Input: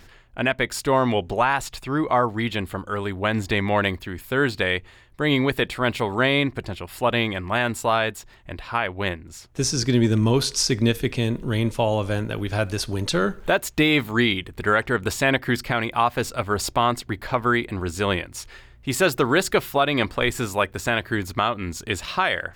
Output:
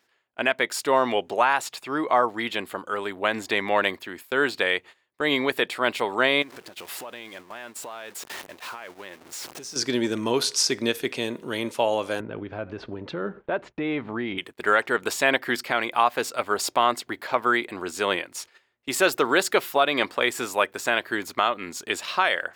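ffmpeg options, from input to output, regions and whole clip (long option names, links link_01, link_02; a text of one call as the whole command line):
ffmpeg -i in.wav -filter_complex "[0:a]asettb=1/sr,asplit=3[link_01][link_02][link_03];[link_01]atrim=end=6.424[link_04];[link_02]atrim=start=6.42:end=9.76,asetpts=PTS-STARTPTS,afade=type=in:duration=0.004:curve=qsin,afade=type=out:start_time=3.336:duration=0.004:curve=qsin,aeval=exprs='val(0)+0.5*0.0355*sgn(val(0))':channel_layout=same,acompressor=threshold=-33dB:ratio=12:attack=3.2:release=140:knee=1:detection=peak[link_05];[link_03]atrim=start=9.756[link_06];[link_04][link_05]acrossfade=duration=0.004:curve1=hsin:curve2=qsin[link_07];[link_07][link_06]acrossfade=duration=0.004:curve1=qsin:curve2=hsin,asettb=1/sr,asplit=3[link_08][link_09][link_10];[link_08]atrim=end=12.204[link_11];[link_09]atrim=start=12.2:end=14.38,asetpts=PTS-STARTPTS,afade=type=in:duration=0.004:curve=qsin,afade=type=out:start_time=2.176:duration=0.004:curve=qsin,lowpass=2800,aemphasis=mode=reproduction:type=riaa,acompressor=threshold=-19dB:ratio=5:attack=3.2:release=140:knee=1:detection=peak[link_12];[link_10]atrim=start=14.376[link_13];[link_11][link_12]acrossfade=duration=0.004:curve1=hsin:curve2=qsin[link_14];[link_14][link_13]acrossfade=duration=0.004:curve1=qsin:curve2=hsin,highpass=350,agate=range=-16dB:threshold=-41dB:ratio=16:detection=peak" out.wav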